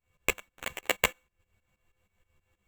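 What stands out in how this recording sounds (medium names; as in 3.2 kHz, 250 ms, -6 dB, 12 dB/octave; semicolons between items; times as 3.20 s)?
a buzz of ramps at a fixed pitch in blocks of 16 samples; tremolo saw up 6.3 Hz, depth 90%; aliases and images of a low sample rate 5 kHz, jitter 0%; a shimmering, thickened sound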